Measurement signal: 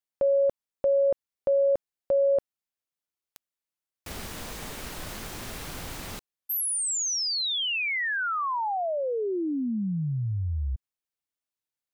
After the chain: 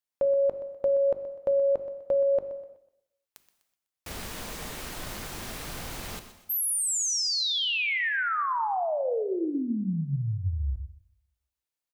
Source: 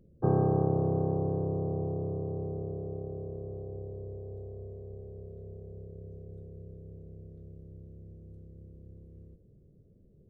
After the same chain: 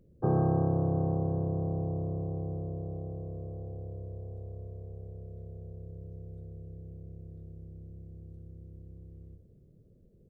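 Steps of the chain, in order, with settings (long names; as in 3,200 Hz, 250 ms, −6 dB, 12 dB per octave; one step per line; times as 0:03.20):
mains-hum notches 50/100/150/200/250/300/350/400 Hz
repeating echo 125 ms, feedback 37%, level −13.5 dB
reverb whose tail is shaped and stops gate 400 ms falling, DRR 10.5 dB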